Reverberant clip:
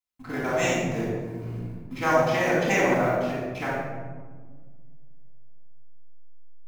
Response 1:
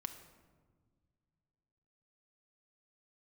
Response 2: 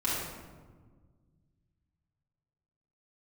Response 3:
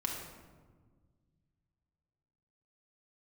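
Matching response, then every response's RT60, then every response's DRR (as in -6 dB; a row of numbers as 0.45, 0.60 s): 2; not exponential, 1.5 s, 1.5 s; 7.0, -9.0, -1.0 dB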